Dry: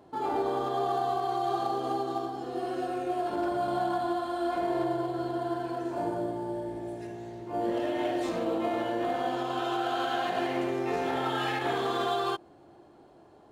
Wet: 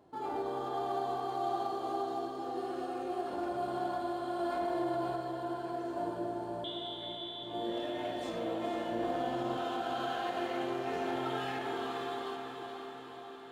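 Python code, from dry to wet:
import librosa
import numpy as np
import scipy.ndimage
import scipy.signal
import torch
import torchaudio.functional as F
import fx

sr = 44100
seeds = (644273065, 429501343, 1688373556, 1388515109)

y = fx.fade_out_tail(x, sr, length_s=2.39)
y = fx.freq_invert(y, sr, carrier_hz=3800, at=(6.64, 7.43))
y = fx.low_shelf(y, sr, hz=180.0, db=10.0, at=(8.91, 9.57))
y = fx.echo_diffused(y, sr, ms=492, feedback_pct=64, wet_db=-6.0)
y = fx.env_flatten(y, sr, amount_pct=50, at=(4.39, 5.16))
y = y * 10.0 ** (-7.0 / 20.0)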